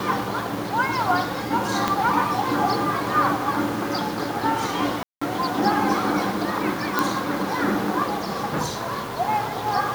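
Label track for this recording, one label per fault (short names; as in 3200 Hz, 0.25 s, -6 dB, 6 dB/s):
1.880000	1.880000	pop -7 dBFS
5.030000	5.210000	gap 0.185 s
6.990000	6.990000	pop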